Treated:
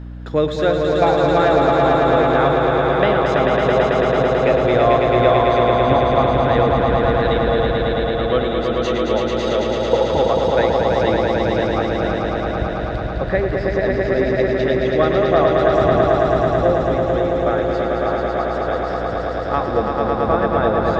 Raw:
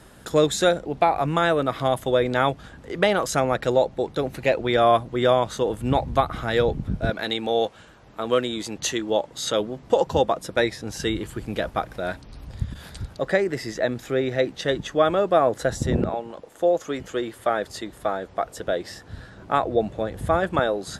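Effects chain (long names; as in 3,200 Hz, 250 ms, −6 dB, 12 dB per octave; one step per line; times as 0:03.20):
high-frequency loss of the air 240 metres
echo that builds up and dies away 110 ms, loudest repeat 5, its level −4 dB
mains hum 60 Hz, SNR 15 dB
level +1.5 dB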